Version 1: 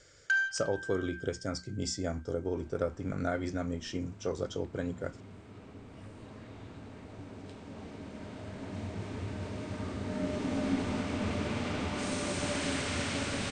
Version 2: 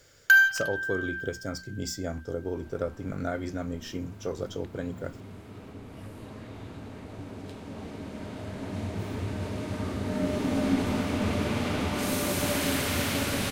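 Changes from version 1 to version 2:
first sound +10.5 dB; second sound +4.5 dB; master: remove Chebyshev low-pass 9.1 kHz, order 8

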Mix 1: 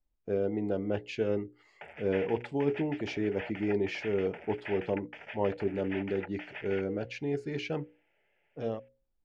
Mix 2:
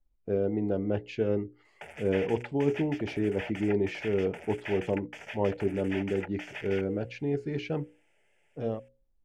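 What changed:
background: remove distance through air 360 m; master: add tilt EQ -1.5 dB/octave

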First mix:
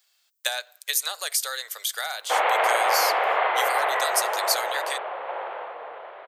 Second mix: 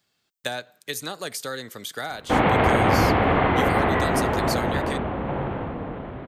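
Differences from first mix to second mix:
speech: add tilt EQ -3 dB/octave; master: remove inverse Chebyshev high-pass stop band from 270 Hz, stop band 40 dB

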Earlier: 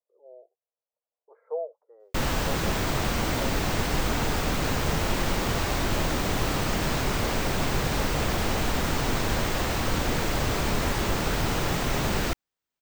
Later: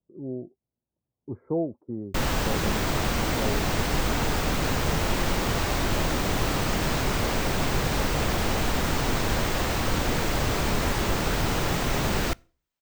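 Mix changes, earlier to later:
speech: remove rippled Chebyshev high-pass 450 Hz, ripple 3 dB; reverb: on, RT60 0.40 s

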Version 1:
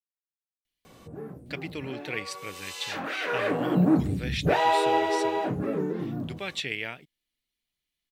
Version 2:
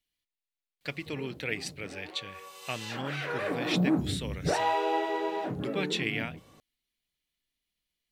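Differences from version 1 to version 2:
speech: entry -0.65 s; background -5.0 dB

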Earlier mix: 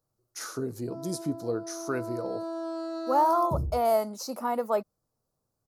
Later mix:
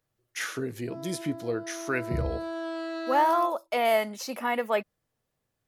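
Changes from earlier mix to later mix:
second sound: entry -1.40 s; master: add high-order bell 2.4 kHz +16 dB 1.3 oct

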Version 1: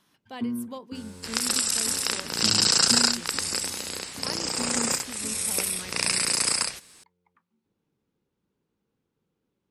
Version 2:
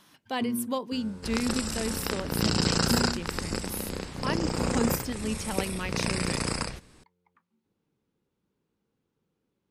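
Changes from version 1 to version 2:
speech +8.5 dB; second sound: add tilt EQ -4 dB/octave

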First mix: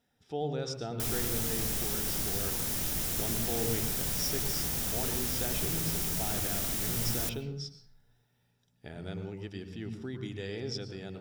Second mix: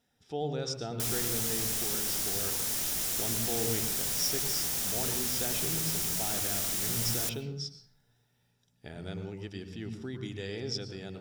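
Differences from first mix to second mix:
background: add bass shelf 250 Hz -10.5 dB; master: add peaking EQ 6.7 kHz +4 dB 1.8 oct

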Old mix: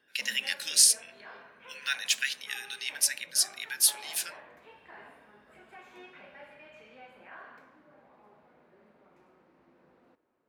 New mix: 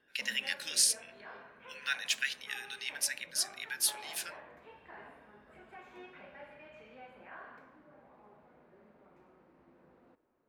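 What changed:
background: add bass shelf 61 Hz +10.5 dB; master: add treble shelf 2.9 kHz -8 dB

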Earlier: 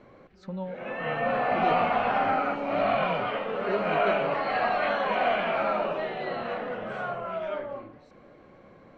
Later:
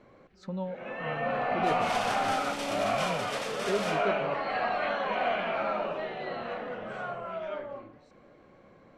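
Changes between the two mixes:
first sound -4.0 dB; second sound: unmuted; reverb: on, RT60 0.55 s; master: remove distance through air 60 m

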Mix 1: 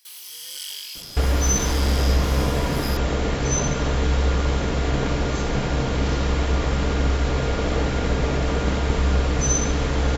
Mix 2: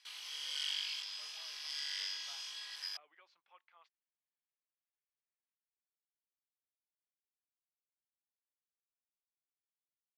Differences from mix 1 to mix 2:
speech -5.5 dB; second sound: muted; master: add band-pass 770–3700 Hz

